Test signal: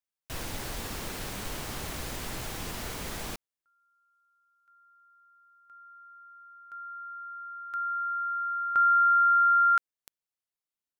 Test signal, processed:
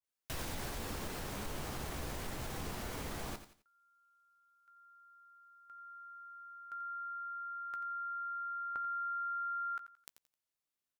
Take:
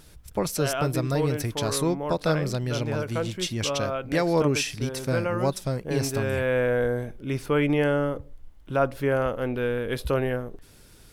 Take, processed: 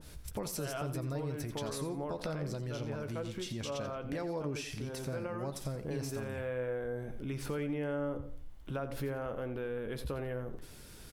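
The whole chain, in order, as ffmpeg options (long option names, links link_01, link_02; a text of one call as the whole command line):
ffmpeg -i in.wav -filter_complex "[0:a]acompressor=threshold=-39dB:ratio=4:attack=10:release=81:knee=1:detection=peak,asplit=2[link_01][link_02];[link_02]adelay=14,volume=-11.5dB[link_03];[link_01][link_03]amix=inputs=2:normalize=0,asplit=2[link_04][link_05];[link_05]aecho=0:1:87|174|261:0.251|0.0728|0.0211[link_06];[link_04][link_06]amix=inputs=2:normalize=0,adynamicequalizer=threshold=0.00316:dfrequency=1600:dqfactor=0.7:tfrequency=1600:tqfactor=0.7:attack=5:release=100:ratio=0.375:range=2.5:mode=cutabove:tftype=highshelf" out.wav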